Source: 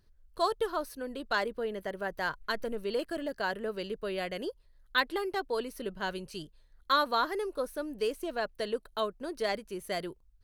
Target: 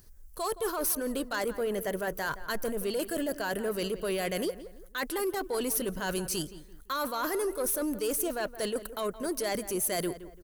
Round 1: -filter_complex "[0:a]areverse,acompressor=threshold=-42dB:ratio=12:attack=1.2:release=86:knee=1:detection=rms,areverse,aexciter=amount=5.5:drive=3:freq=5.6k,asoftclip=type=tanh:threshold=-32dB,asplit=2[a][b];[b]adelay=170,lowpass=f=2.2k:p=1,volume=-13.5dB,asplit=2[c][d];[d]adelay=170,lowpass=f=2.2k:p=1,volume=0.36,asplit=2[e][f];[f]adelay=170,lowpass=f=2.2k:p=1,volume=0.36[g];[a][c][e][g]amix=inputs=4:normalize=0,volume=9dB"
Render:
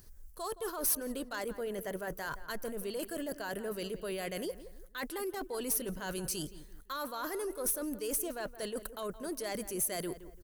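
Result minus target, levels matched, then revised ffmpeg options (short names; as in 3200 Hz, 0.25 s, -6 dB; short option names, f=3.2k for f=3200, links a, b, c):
compressor: peak gain reduction +8 dB
-filter_complex "[0:a]areverse,acompressor=threshold=-33.5dB:ratio=12:attack=1.2:release=86:knee=1:detection=rms,areverse,aexciter=amount=5.5:drive=3:freq=5.6k,asoftclip=type=tanh:threshold=-32dB,asplit=2[a][b];[b]adelay=170,lowpass=f=2.2k:p=1,volume=-13.5dB,asplit=2[c][d];[d]adelay=170,lowpass=f=2.2k:p=1,volume=0.36,asplit=2[e][f];[f]adelay=170,lowpass=f=2.2k:p=1,volume=0.36[g];[a][c][e][g]amix=inputs=4:normalize=0,volume=9dB"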